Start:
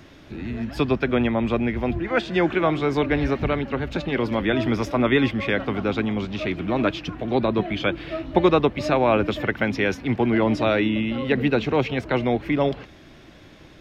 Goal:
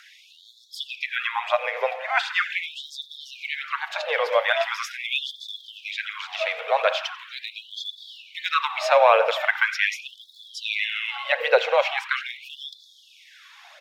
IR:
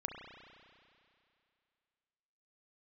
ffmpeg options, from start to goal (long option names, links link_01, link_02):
-filter_complex "[0:a]aecho=1:1:90:0.0891,asplit=2[link_01][link_02];[1:a]atrim=start_sample=2205,afade=type=out:start_time=0.32:duration=0.01,atrim=end_sample=14553[link_03];[link_02][link_03]afir=irnorm=-1:irlink=0,volume=-2dB[link_04];[link_01][link_04]amix=inputs=2:normalize=0,afreqshift=26,aphaser=in_gain=1:out_gain=1:delay=2.7:decay=0.36:speed=1.3:type=triangular,afftfilt=real='re*gte(b*sr/1024,430*pow(3400/430,0.5+0.5*sin(2*PI*0.41*pts/sr)))':imag='im*gte(b*sr/1024,430*pow(3400/430,0.5+0.5*sin(2*PI*0.41*pts/sr)))':win_size=1024:overlap=0.75"